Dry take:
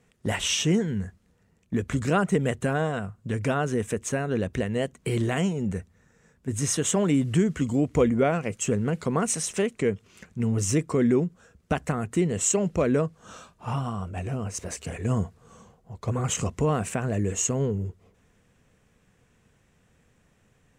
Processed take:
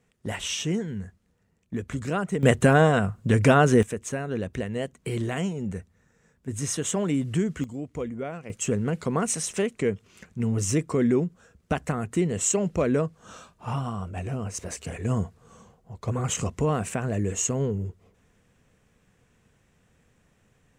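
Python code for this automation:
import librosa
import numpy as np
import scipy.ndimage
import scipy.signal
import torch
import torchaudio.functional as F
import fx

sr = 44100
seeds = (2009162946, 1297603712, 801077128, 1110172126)

y = fx.gain(x, sr, db=fx.steps((0.0, -4.5), (2.43, 8.0), (3.83, -3.0), (7.64, -11.0), (8.5, -0.5)))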